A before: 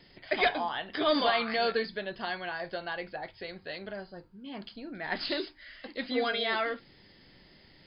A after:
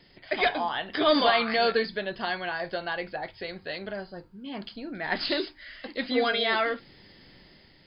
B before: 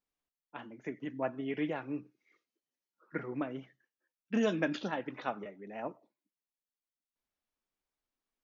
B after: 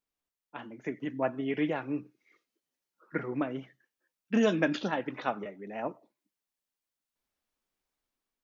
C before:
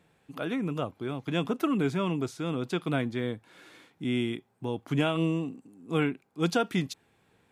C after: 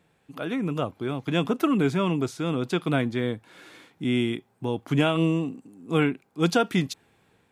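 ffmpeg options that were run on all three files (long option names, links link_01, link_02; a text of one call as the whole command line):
ffmpeg -i in.wav -af "dynaudnorm=framelen=220:gausssize=5:maxgain=4.5dB" out.wav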